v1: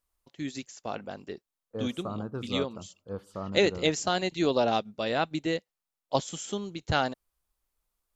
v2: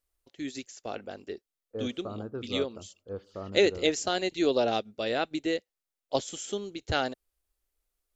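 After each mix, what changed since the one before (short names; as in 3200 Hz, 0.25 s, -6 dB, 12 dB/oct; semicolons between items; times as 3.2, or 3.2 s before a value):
second voice: add air absorption 190 m; master: add fifteen-band EQ 160 Hz -11 dB, 400 Hz +3 dB, 1000 Hz -7 dB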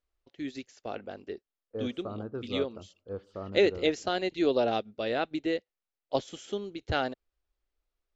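first voice: add air absorption 150 m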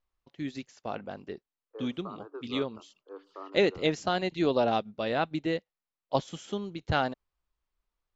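second voice: add rippled Chebyshev high-pass 280 Hz, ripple 9 dB; master: add fifteen-band EQ 160 Hz +11 dB, 400 Hz -3 dB, 1000 Hz +7 dB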